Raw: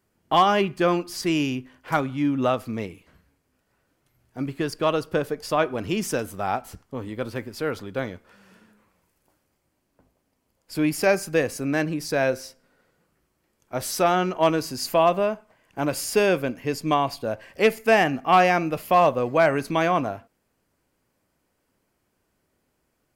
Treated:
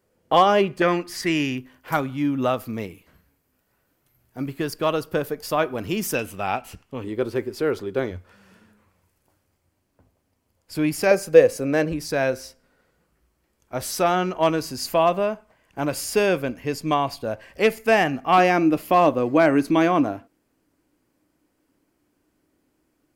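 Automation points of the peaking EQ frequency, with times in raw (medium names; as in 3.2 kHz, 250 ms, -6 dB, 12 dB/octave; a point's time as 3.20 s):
peaking EQ +12.5 dB 0.43 oct
510 Hz
from 0.82 s 1.9 kHz
from 1.58 s 14 kHz
from 6.15 s 2.7 kHz
from 7.04 s 380 Hz
from 8.11 s 89 Hz
from 11.11 s 510 Hz
from 11.92 s 60 Hz
from 18.38 s 300 Hz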